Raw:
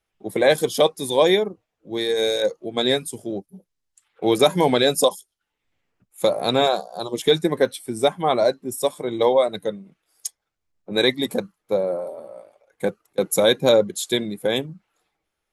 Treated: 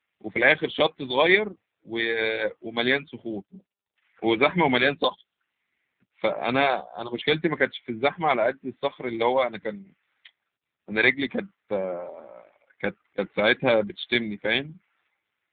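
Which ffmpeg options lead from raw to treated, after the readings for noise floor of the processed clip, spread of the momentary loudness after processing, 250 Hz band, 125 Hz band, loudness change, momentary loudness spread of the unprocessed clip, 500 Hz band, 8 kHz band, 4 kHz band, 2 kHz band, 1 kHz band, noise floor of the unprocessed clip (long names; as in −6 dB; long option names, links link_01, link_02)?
−84 dBFS, 14 LU, −3.0 dB, −4.0 dB, −3.0 dB, 13 LU, −6.0 dB, below −40 dB, −5.5 dB, +6.5 dB, −2.0 dB, −80 dBFS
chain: -af "equalizer=frequency=125:width_type=o:width=1:gain=-4,equalizer=frequency=500:width_type=o:width=1:gain=-7,equalizer=frequency=2000:width_type=o:width=1:gain=10" -ar 8000 -c:a libopencore_amrnb -b:a 7400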